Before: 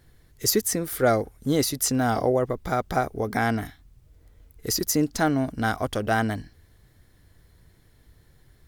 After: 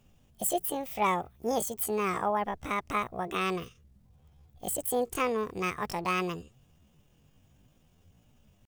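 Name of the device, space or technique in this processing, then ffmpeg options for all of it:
chipmunk voice: -af "asetrate=72056,aresample=44100,atempo=0.612027,volume=-6.5dB"

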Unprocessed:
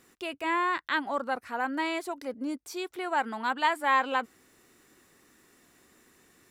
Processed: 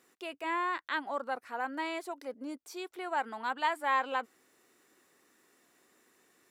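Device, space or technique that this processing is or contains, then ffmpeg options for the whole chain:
filter by subtraction: -filter_complex "[0:a]asplit=2[a][b];[b]lowpass=510,volume=-1[c];[a][c]amix=inputs=2:normalize=0,volume=-6dB"

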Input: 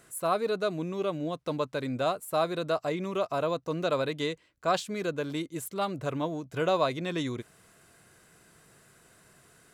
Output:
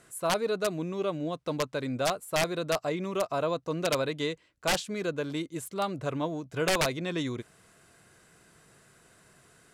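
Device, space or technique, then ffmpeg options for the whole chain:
overflowing digital effects unit: -af "aeval=exprs='(mod(8.41*val(0)+1,2)-1)/8.41':c=same,lowpass=11k"

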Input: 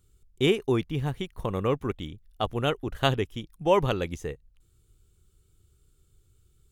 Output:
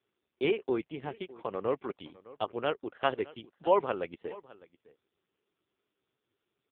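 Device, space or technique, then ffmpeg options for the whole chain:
satellite phone: -af "highpass=360,lowpass=3.1k,aecho=1:1:607:0.1,volume=-1.5dB" -ar 8000 -c:a libopencore_amrnb -b:a 5150

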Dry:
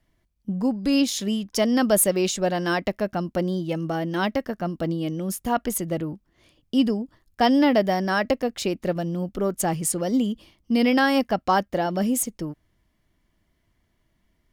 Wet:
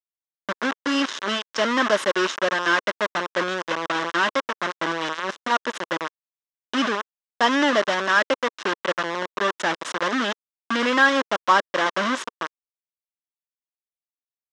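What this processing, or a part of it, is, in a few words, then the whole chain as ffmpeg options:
hand-held game console: -af "acrusher=bits=3:mix=0:aa=0.000001,highpass=430,equalizer=f=450:t=q:w=4:g=-3,equalizer=f=740:t=q:w=4:g=-10,equalizer=f=1.1k:t=q:w=4:g=5,equalizer=f=1.6k:t=q:w=4:g=4,equalizer=f=2.4k:t=q:w=4:g=-5,equalizer=f=4.5k:t=q:w=4:g=-9,lowpass=f=5.1k:w=0.5412,lowpass=f=5.1k:w=1.3066,volume=4dB"

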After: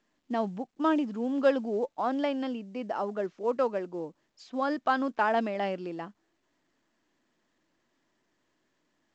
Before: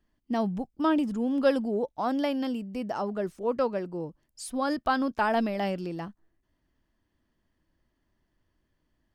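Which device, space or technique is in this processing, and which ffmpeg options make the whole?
telephone: -af "highpass=260,lowpass=3.4k" -ar 16000 -c:a pcm_mulaw

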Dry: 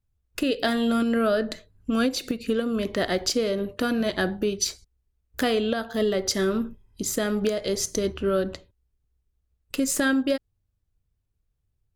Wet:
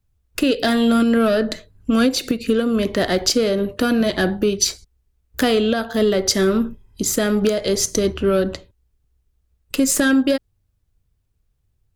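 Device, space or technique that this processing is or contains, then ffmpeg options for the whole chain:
one-band saturation: -filter_complex "[0:a]acrossover=split=370|3500[a][b][c];[b]asoftclip=type=tanh:threshold=-23dB[d];[a][d][c]amix=inputs=3:normalize=0,volume=7.5dB"

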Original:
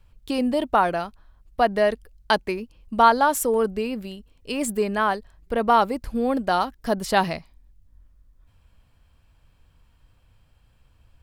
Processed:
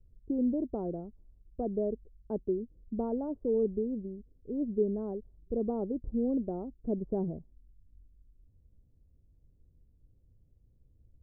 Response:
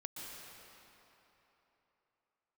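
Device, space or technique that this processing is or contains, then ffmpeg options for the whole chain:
under water: -af "lowpass=f=440:w=0.5412,lowpass=f=440:w=1.3066,equalizer=f=390:t=o:w=0.31:g=4,volume=-5dB"

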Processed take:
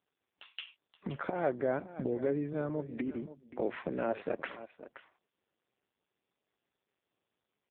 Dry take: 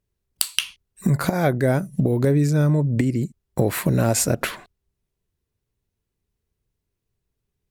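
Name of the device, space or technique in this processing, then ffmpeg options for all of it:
satellite phone: -filter_complex "[0:a]asplit=3[a][b][c];[a]afade=t=out:st=2.52:d=0.02[d];[b]highpass=f=140:w=0.5412,highpass=f=140:w=1.3066,afade=t=in:st=2.52:d=0.02,afade=t=out:st=4.5:d=0.02[e];[c]afade=t=in:st=4.5:d=0.02[f];[d][e][f]amix=inputs=3:normalize=0,highpass=310,lowpass=3.2k,aecho=1:1:526:0.188,volume=-8.5dB" -ar 8000 -c:a libopencore_amrnb -b:a 5150

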